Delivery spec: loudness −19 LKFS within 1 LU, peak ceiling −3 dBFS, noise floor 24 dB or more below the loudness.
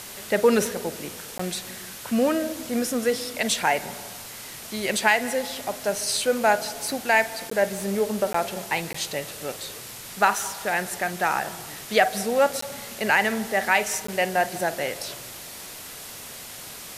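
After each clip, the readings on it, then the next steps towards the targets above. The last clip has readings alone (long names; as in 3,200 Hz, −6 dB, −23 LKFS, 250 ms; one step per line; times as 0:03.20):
number of dropouts 6; longest dropout 14 ms; background noise floor −40 dBFS; target noise floor −49 dBFS; integrated loudness −24.5 LKFS; sample peak −5.0 dBFS; target loudness −19.0 LKFS
→ repair the gap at 0:01.38/0:07.50/0:08.33/0:08.93/0:12.61/0:14.07, 14 ms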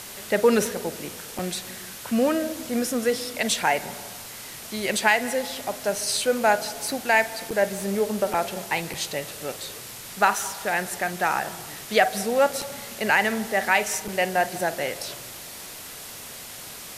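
number of dropouts 0; background noise floor −40 dBFS; target noise floor −49 dBFS
→ broadband denoise 9 dB, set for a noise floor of −40 dBFS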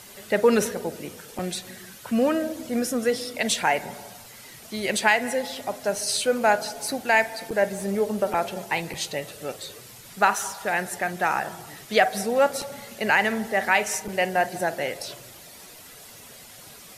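background noise floor −46 dBFS; target noise floor −49 dBFS
→ broadband denoise 6 dB, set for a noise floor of −46 dBFS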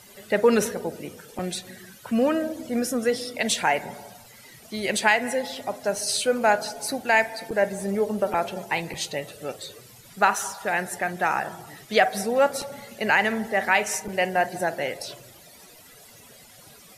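background noise floor −50 dBFS; integrated loudness −24.5 LKFS; sample peak −5.5 dBFS; target loudness −19.0 LKFS
→ level +5.5 dB
brickwall limiter −3 dBFS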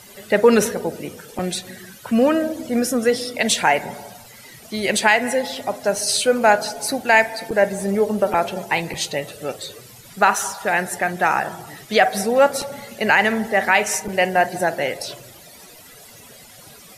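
integrated loudness −19.5 LKFS; sample peak −3.0 dBFS; background noise floor −44 dBFS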